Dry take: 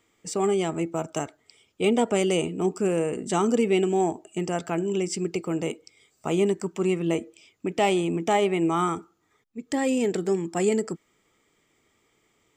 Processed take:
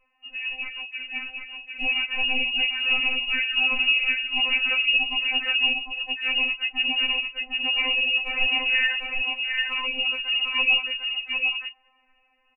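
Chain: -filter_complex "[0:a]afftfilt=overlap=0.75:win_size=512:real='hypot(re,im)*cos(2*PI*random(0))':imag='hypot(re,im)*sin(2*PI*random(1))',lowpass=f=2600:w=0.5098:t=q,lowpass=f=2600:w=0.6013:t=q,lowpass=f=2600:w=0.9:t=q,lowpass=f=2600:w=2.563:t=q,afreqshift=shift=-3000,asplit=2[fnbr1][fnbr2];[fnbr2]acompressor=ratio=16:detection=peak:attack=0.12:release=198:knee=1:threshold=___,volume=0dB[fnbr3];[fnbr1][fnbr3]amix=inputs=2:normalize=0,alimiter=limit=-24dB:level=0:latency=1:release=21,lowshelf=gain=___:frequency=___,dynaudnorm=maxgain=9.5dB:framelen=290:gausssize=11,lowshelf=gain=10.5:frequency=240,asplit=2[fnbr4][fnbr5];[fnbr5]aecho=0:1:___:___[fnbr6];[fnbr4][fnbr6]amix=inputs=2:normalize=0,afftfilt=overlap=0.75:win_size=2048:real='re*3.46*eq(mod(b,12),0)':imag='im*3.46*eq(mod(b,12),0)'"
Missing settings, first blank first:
-38dB, 10, 120, 751, 0.668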